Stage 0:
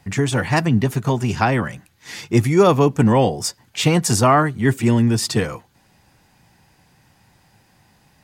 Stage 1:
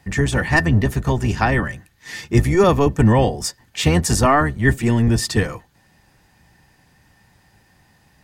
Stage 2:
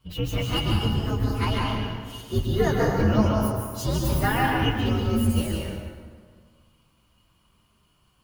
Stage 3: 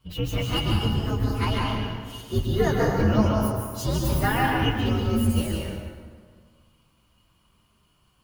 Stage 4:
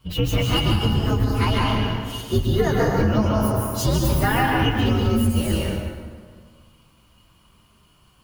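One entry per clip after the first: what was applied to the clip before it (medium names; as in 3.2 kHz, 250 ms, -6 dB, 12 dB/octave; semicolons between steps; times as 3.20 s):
octave divider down 1 oct, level -3 dB; small resonant body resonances 1.8 kHz, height 16 dB, ringing for 95 ms; trim -1 dB
frequency axis rescaled in octaves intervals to 124%; plate-style reverb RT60 1.7 s, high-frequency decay 0.65×, pre-delay 120 ms, DRR -1.5 dB; trim -7.5 dB
no audible change
compression, threshold -23 dBFS, peak gain reduction 8.5 dB; trim +7.5 dB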